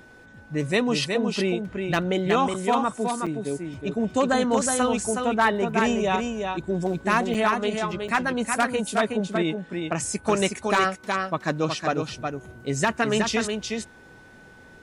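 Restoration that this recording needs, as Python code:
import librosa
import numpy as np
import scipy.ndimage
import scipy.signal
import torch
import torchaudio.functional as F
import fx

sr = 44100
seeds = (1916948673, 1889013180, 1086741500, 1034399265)

y = fx.fix_declip(x, sr, threshold_db=-11.5)
y = fx.notch(y, sr, hz=1500.0, q=30.0)
y = fx.fix_interpolate(y, sr, at_s=(2.54, 3.26, 7.34, 8.08), length_ms=5.5)
y = fx.fix_echo_inverse(y, sr, delay_ms=368, level_db=-5.0)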